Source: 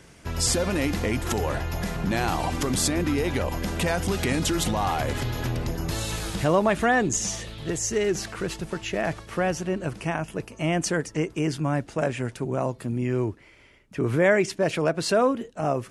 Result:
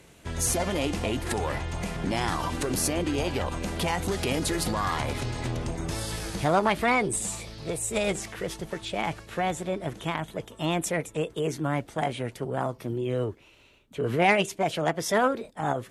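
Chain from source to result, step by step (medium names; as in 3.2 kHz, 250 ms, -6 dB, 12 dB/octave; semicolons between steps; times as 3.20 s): formant shift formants +4 st; Chebyshev shaper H 3 -20 dB, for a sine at -8 dBFS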